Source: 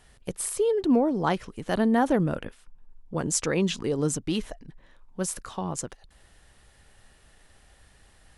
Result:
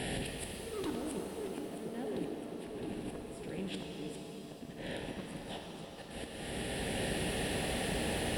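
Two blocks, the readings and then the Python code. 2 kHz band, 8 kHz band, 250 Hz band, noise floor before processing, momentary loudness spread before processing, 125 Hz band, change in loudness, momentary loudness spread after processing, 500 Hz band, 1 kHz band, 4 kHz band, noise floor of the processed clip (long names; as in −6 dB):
−4.5 dB, −12.0 dB, −12.0 dB, −59 dBFS, 15 LU, −9.0 dB, −12.5 dB, 10 LU, −10.5 dB, −12.0 dB, −2.0 dB, −48 dBFS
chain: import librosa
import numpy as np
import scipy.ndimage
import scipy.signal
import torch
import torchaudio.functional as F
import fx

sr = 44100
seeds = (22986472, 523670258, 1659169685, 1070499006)

p1 = fx.bin_compress(x, sr, power=0.6)
p2 = scipy.signal.sosfilt(scipy.signal.butter(4, 42.0, 'highpass', fs=sr, output='sos'), p1)
p3 = fx.gate_flip(p2, sr, shuts_db=-15.0, range_db=-29)
p4 = fx.dynamic_eq(p3, sr, hz=630.0, q=2.4, threshold_db=-49.0, ratio=4.0, max_db=4)
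p5 = fx.fixed_phaser(p4, sr, hz=2800.0, stages=4)
p6 = p5 + fx.echo_feedback(p5, sr, ms=663, feedback_pct=59, wet_db=-16.5, dry=0)
p7 = np.clip(p6, -10.0 ** (-28.0 / 20.0), 10.0 ** (-28.0 / 20.0))
p8 = fx.auto_swell(p7, sr, attack_ms=714.0)
p9 = fx.over_compress(p8, sr, threshold_db=-53.0, ratio=-1.0)
p10 = p8 + (p9 * librosa.db_to_amplitude(-1.0))
p11 = fx.rev_shimmer(p10, sr, seeds[0], rt60_s=3.8, semitones=7, shimmer_db=-8, drr_db=0.5)
y = p11 * librosa.db_to_amplitude(4.5)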